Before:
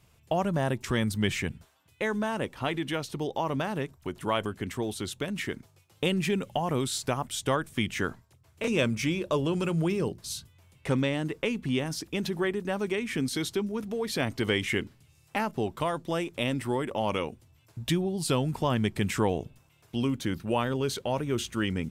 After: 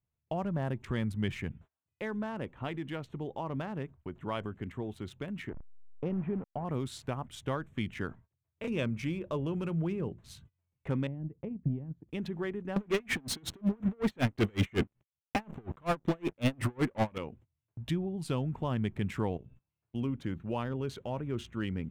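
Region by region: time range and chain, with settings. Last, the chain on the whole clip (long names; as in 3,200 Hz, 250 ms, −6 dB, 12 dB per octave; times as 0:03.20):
0:05.49–0:06.65: hold until the input has moved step −33 dBFS + low-pass filter 1,200 Hz
0:11.07–0:12.09: resonant band-pass 120 Hz, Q 1 + transient designer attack +11 dB, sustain −6 dB
0:12.76–0:17.18: leveller curve on the samples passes 5 + tremolo with a sine in dB 5.4 Hz, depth 35 dB
0:19.37–0:19.95: double-tracking delay 16 ms −5 dB + dynamic equaliser 810 Hz, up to −5 dB, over −50 dBFS, Q 0.98 + downward compressor 2.5 to 1, threshold −45 dBFS
whole clip: adaptive Wiener filter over 9 samples; noise gate −49 dBFS, range −21 dB; bass and treble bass +5 dB, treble −6 dB; level −8 dB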